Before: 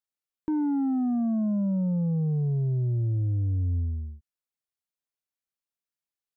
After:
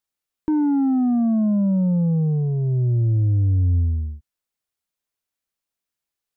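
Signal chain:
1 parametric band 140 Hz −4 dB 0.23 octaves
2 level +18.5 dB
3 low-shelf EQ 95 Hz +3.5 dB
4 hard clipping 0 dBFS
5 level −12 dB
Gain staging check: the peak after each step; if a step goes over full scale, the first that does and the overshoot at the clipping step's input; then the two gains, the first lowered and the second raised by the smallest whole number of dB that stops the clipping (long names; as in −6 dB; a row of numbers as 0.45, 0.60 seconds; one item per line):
−23.0, −4.5, −2.5, −2.5, −14.5 dBFS
no step passes full scale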